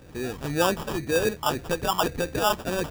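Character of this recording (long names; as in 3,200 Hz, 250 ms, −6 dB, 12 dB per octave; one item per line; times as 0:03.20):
phaser sweep stages 4, 1.9 Hz, lowest notch 500–1,600 Hz
aliases and images of a low sample rate 2,100 Hz, jitter 0%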